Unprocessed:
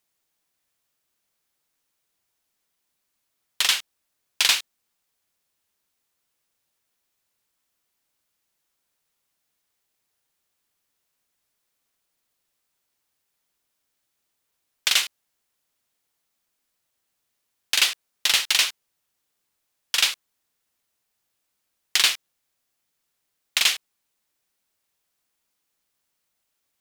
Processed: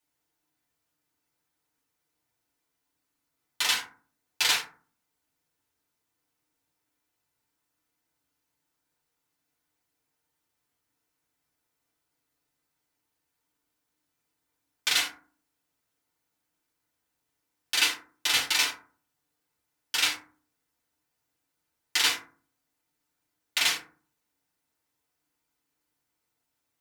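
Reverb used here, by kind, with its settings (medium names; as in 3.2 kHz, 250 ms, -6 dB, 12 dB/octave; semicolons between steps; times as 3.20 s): FDN reverb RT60 0.42 s, low-frequency decay 1.5×, high-frequency decay 0.4×, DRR -7 dB; trim -9 dB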